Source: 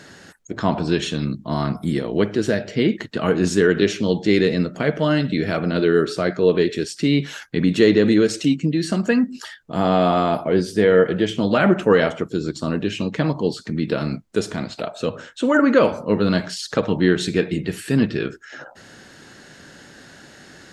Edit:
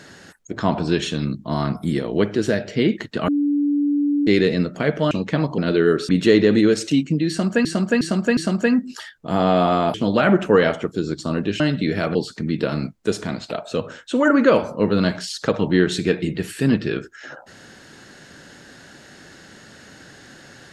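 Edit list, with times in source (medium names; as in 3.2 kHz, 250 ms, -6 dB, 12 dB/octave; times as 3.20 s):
3.28–4.27 s: bleep 289 Hz -16 dBFS
5.11–5.66 s: swap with 12.97–13.44 s
6.17–7.62 s: delete
8.82–9.18 s: loop, 4 plays
10.39–11.31 s: delete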